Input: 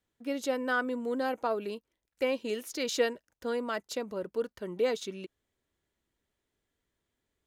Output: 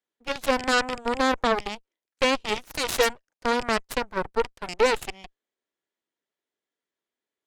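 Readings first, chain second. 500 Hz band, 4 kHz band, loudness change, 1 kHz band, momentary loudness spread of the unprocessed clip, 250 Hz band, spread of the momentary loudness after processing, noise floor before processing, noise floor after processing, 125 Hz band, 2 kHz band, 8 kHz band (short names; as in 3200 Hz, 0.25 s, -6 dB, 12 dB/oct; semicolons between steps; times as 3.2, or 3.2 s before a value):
+5.0 dB, +11.0 dB, +7.5 dB, +11.0 dB, 10 LU, +4.0 dB, 9 LU, -85 dBFS, under -85 dBFS, n/a, +9.0 dB, +8.0 dB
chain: rattling part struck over -42 dBFS, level -29 dBFS; in parallel at +1.5 dB: limiter -26.5 dBFS, peak gain reduction 10.5 dB; on the sum: BPF 320–7500 Hz; added harmonics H 5 -12 dB, 6 -12 dB, 7 -9 dB, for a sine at -13 dBFS; gain +1 dB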